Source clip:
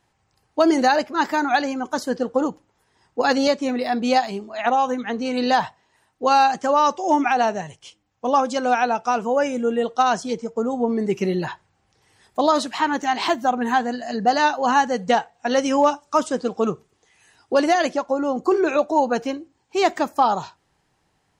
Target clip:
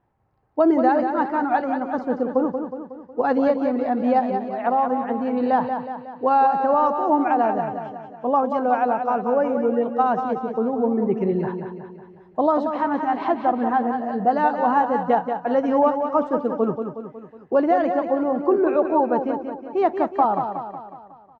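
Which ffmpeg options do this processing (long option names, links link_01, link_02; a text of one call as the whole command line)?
ffmpeg -i in.wav -af "lowpass=1100,aecho=1:1:183|366|549|732|915|1098:0.447|0.237|0.125|0.0665|0.0352|0.0187" out.wav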